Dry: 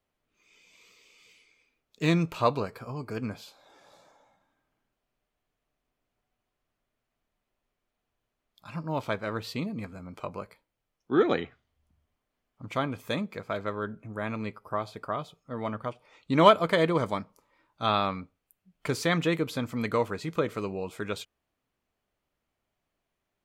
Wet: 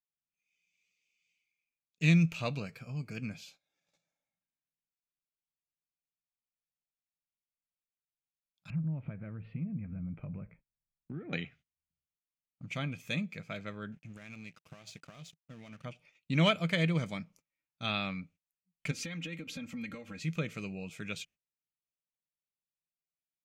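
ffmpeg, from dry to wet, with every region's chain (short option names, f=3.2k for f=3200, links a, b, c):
-filter_complex "[0:a]asettb=1/sr,asplit=3[a][b][c];[a]atrim=end=8.704[d];[b]atrim=start=8.7:end=11.33,asetpts=PTS-STARTPTS,afade=t=in:d=0.004:c=qsin,afade=t=out:st=2.626:d=0.004:c=qsin,lowpass=f=2.1k:w=0.5412,lowpass=f=2.1k:w=1.3066,aemphasis=mode=reproduction:type=riaa,acompressor=threshold=-32dB:ratio=6:attack=3.2:release=140:knee=1:detection=peak[e];[c]atrim=start=11.326[f];[d][e]acrossfade=d=0.004:c1=hsin:c2=qsin[g];[g][f]acrossfade=d=0.004:c1=qsin:c2=hsin,asettb=1/sr,asplit=3[h][i][j];[h]atrim=end=13.924[k];[i]atrim=start=13.92:end=15.85,asetpts=PTS-STARTPTS,afade=t=in:d=0.004:c=qsin,afade=t=out:st=1.926:d=0.004:c=qsin,equalizer=f=6.7k:w=0.78:g=9,acompressor=threshold=-36dB:ratio=12:attack=3.2:release=140:knee=1:detection=peak,aeval=exprs='sgn(val(0))*max(abs(val(0))-0.00211,0)':c=same[l];[j]atrim=start=15.846[m];[k][l]acrossfade=d=0.004:c1=hsin:c2=qsin[n];[n][m]acrossfade=d=0.004:c1=qsin:c2=hsin,asettb=1/sr,asplit=3[o][p][q];[o]atrim=end=18.914[r];[p]atrim=start=18.91:end=20.2,asetpts=PTS-STARTPTS,afade=t=in:d=0.004:c=qsin,afade=t=out:st=1.286:d=0.004:c=qsin,highshelf=f=3.9k:g=-6.5,acompressor=threshold=-33dB:ratio=12:attack=3.2:release=140:knee=1:detection=peak,aecho=1:1:3.7:0.92,atrim=end_sample=56889[s];[q]atrim=start=20.196[t];[r][s]acrossfade=d=0.004:c1=hsin:c2=qsin[u];[u][t]acrossfade=d=0.004:c1=qsin:c2=hsin,agate=range=-21dB:threshold=-54dB:ratio=16:detection=peak,equalizer=f=160:t=o:w=0.67:g=12,equalizer=f=400:t=o:w=0.67:g=-6,equalizer=f=1k:t=o:w=0.67:g=-11,equalizer=f=2.5k:t=o:w=0.67:g=12,equalizer=f=6.3k:t=o:w=0.67:g=9,volume=-8.5dB"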